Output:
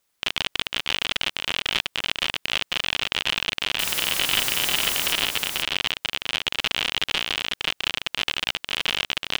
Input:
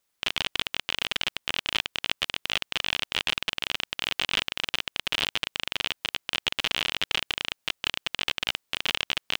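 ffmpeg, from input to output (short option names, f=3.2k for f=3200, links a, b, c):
-filter_complex "[0:a]asettb=1/sr,asplit=3[a][b][c];[a]atrim=end=3.794[d];[b]atrim=start=3.79:end=5.13,asetpts=PTS-STARTPTS,afade=t=in:d=0.004:c=qsin,afade=t=out:st=1.336:d=0.004:c=qsin,aeval=exprs='val(0)+0.5*0.0596*sgn(val(0))':c=same[e];[c]atrim=start=5.126[f];[d][e]acrossfade=d=0.004:c1=hsin:c2=qsin[g];[g][f]acrossfade=d=0.004:c1=qsin:c2=hsin,asplit=2[h][i];[i]alimiter=limit=-13dB:level=0:latency=1,volume=-2.5dB[j];[h][j]amix=inputs=2:normalize=0,aecho=1:1:498:0.631,volume=-1dB"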